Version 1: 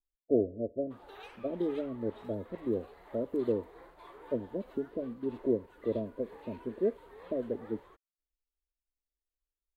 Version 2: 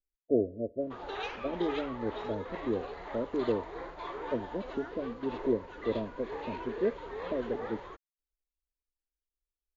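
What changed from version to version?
background +12.0 dB; master: add brick-wall FIR low-pass 7200 Hz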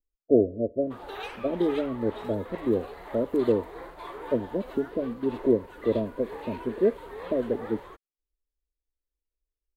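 speech +7.0 dB; master: remove brick-wall FIR low-pass 7200 Hz

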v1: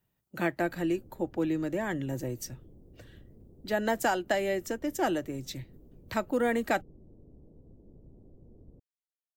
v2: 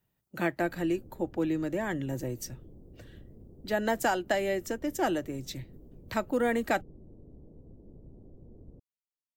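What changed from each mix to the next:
background +3.0 dB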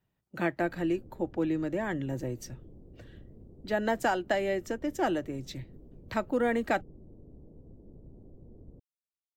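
speech: add high shelf 7100 Hz -12 dB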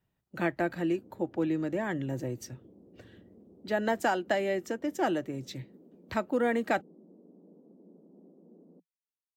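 background: add steep high-pass 170 Hz 96 dB/oct

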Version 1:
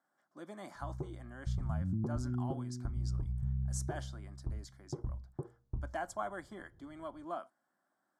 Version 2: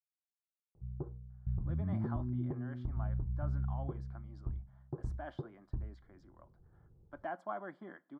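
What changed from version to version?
speech: entry +1.30 s; master: add air absorption 480 m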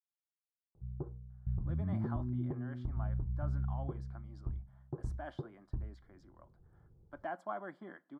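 master: add high shelf 7000 Hz +9 dB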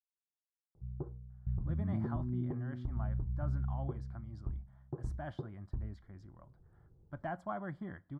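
speech: remove HPF 260 Hz 24 dB/oct; master: remove notch 1900 Hz, Q 23

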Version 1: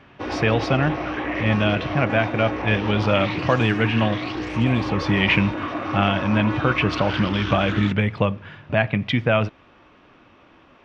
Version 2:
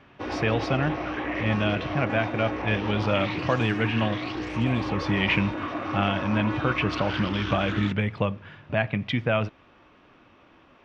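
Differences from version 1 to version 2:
speech -5.0 dB; background -3.5 dB

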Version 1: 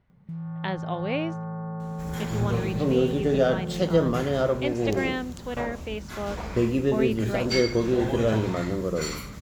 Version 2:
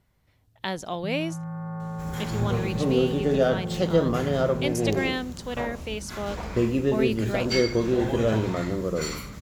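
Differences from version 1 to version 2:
speech: remove LPF 2700 Hz 12 dB/oct; first sound: entry +0.75 s

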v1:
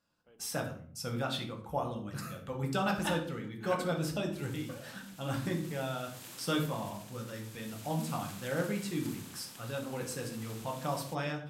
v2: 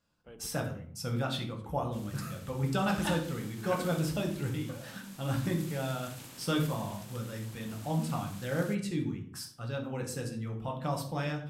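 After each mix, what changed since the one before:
first sound +10.5 dB; second sound: entry -2.40 s; master: add low shelf 140 Hz +9 dB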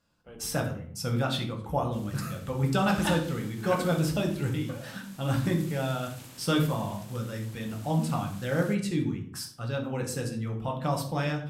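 speech +4.5 dB; first sound: send +8.5 dB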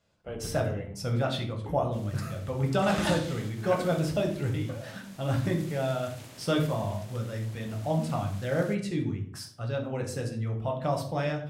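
speech -3.0 dB; first sound +7.0 dB; master: add thirty-one-band EQ 100 Hz +11 dB, 400 Hz +4 dB, 630 Hz +9 dB, 2000 Hz +3 dB, 8000 Hz -3 dB, 12500 Hz -7 dB

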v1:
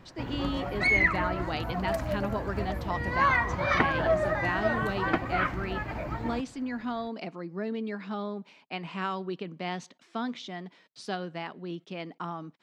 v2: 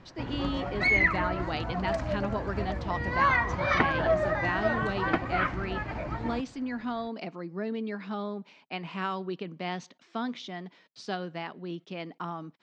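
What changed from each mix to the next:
master: add LPF 6900 Hz 24 dB/oct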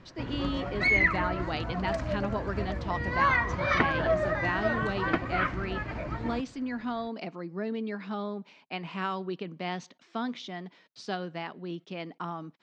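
background: add bell 810 Hz -6 dB 0.33 oct

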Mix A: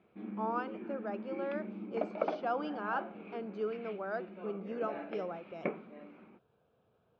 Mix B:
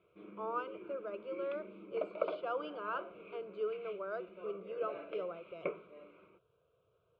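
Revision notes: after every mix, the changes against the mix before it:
master: add fixed phaser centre 1200 Hz, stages 8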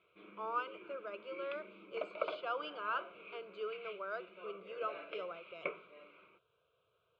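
master: add tilt shelf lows -8 dB, about 930 Hz

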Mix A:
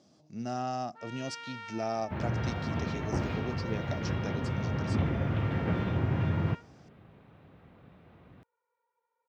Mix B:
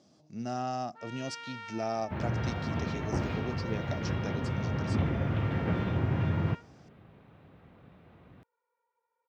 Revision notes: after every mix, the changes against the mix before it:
none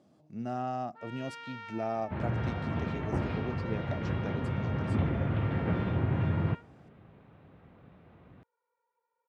speech: remove synth low-pass 5600 Hz, resonance Q 2.9; master: add LPF 3100 Hz 6 dB/oct

